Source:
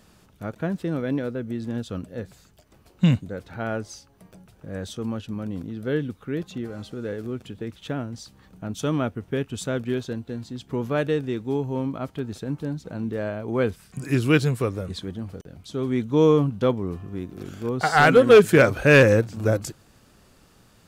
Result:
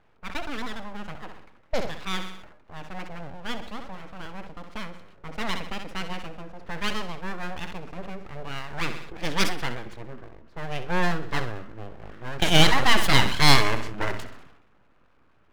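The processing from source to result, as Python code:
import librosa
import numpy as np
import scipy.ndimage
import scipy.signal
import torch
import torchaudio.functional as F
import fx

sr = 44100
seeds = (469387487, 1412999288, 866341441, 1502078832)

p1 = fx.speed_glide(x, sr, from_pct=180, to_pct=89)
p2 = fx.band_shelf(p1, sr, hz=1800.0, db=10.0, octaves=1.7)
p3 = fx.env_lowpass(p2, sr, base_hz=950.0, full_db=-12.5)
p4 = np.abs(p3)
p5 = p4 + fx.echo_feedback(p4, sr, ms=64, feedback_pct=45, wet_db=-15.0, dry=0)
p6 = fx.sustainer(p5, sr, db_per_s=65.0)
y = p6 * 10.0 ** (-5.0 / 20.0)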